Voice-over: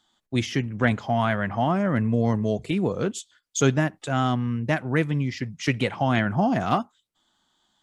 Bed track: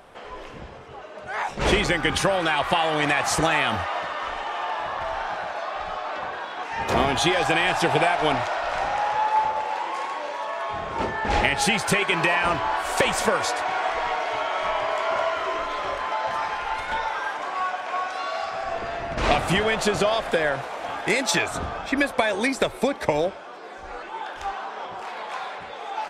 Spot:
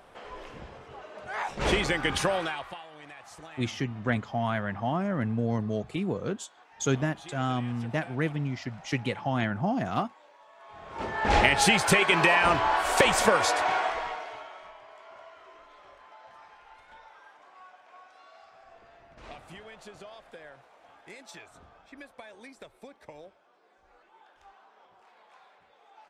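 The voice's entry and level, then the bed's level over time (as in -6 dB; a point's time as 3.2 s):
3.25 s, -6.0 dB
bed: 2.37 s -5 dB
2.87 s -25.5 dB
10.53 s -25.5 dB
11.27 s 0 dB
13.72 s 0 dB
14.78 s -25 dB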